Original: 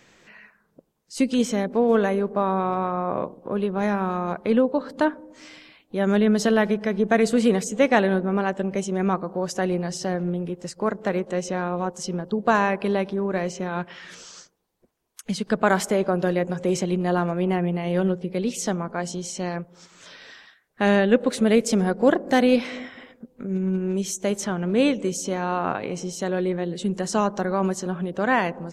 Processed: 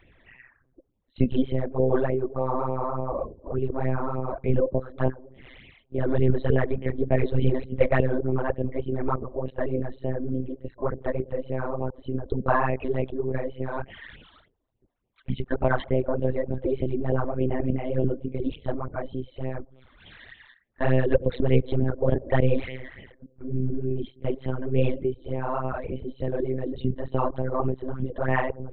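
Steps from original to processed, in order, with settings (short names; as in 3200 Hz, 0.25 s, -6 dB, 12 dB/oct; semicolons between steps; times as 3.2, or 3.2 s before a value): formant sharpening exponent 1.5; monotone LPC vocoder at 8 kHz 130 Hz; phaser stages 12, 3.4 Hz, lowest notch 130–1500 Hz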